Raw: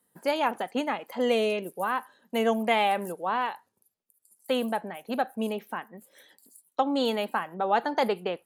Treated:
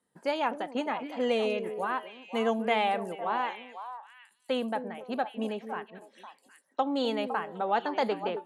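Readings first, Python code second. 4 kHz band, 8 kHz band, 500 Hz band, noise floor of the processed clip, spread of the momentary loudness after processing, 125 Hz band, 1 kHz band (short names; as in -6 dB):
-3.5 dB, n/a, -2.5 dB, -70 dBFS, 13 LU, -3.0 dB, -2.5 dB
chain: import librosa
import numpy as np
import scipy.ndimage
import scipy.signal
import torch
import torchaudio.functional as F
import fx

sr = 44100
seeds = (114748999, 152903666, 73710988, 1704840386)

y = scipy.signal.sosfilt(scipy.signal.bessel(8, 7000.0, 'lowpass', norm='mag', fs=sr, output='sos'), x)
y = fx.echo_stepped(y, sr, ms=254, hz=340.0, octaves=1.4, feedback_pct=70, wet_db=-6)
y = F.gain(torch.from_numpy(y), -3.0).numpy()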